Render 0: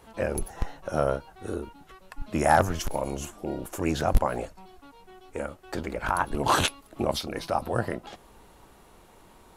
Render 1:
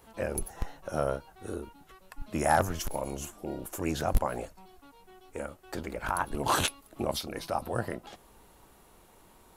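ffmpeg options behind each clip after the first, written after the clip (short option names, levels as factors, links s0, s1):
-af "highshelf=f=10000:g=10,volume=0.596"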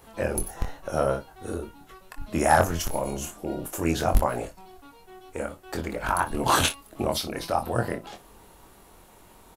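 -af "aecho=1:1:24|59:0.501|0.15,volume=1.68"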